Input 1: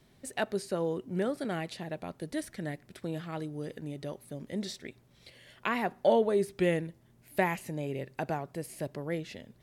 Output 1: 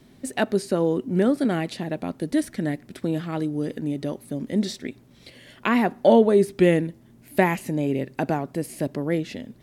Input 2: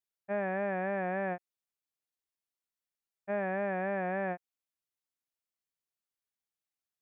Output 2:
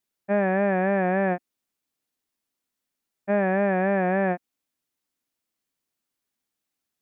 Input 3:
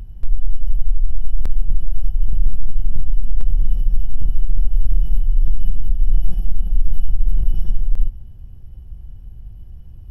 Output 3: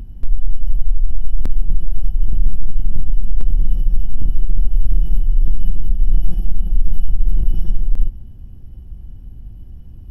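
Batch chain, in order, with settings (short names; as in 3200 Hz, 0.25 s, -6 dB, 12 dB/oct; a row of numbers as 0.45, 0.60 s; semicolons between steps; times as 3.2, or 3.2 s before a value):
bell 260 Hz +9 dB 0.84 oct; match loudness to -24 LUFS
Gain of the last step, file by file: +7.0, +8.5, +1.0 dB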